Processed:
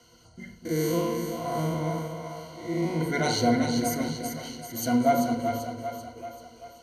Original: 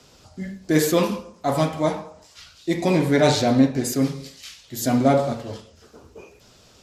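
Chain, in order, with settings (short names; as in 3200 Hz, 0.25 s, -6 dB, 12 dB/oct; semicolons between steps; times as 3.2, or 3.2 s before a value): 0.65–3.01 time blur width 0.213 s; ripple EQ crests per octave 1.9, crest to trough 18 dB; split-band echo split 500 Hz, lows 0.245 s, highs 0.388 s, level -6 dB; gain -8.5 dB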